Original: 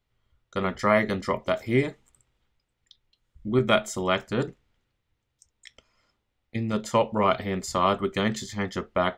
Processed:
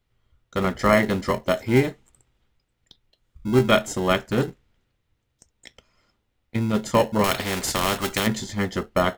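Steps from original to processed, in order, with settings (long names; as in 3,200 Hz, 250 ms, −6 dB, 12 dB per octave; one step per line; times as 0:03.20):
in parallel at −9 dB: decimation without filtering 37×
0:07.24–0:08.27: on the sum: every bin compressed towards the loudest bin 2 to 1
level +2.5 dB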